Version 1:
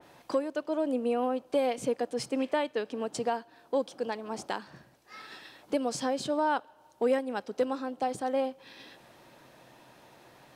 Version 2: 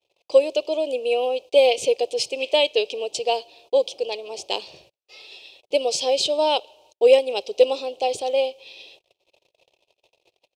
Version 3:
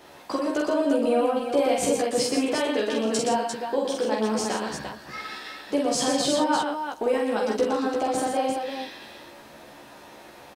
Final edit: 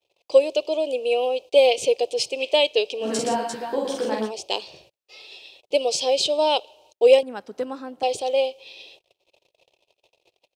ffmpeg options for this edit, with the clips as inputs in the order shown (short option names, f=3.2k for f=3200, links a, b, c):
-filter_complex "[1:a]asplit=3[a][b][c];[a]atrim=end=3.1[d];[2:a]atrim=start=3:end=4.32[e];[b]atrim=start=4.22:end=7.232[f];[0:a]atrim=start=7.228:end=8.032[g];[c]atrim=start=8.028[h];[d][e]acrossfade=d=0.1:c1=tri:c2=tri[i];[i][f]acrossfade=d=0.1:c1=tri:c2=tri[j];[j][g]acrossfade=d=0.004:c1=hsin:c2=hsin[k];[k][h]acrossfade=d=0.004:c1=hsin:c2=hsin"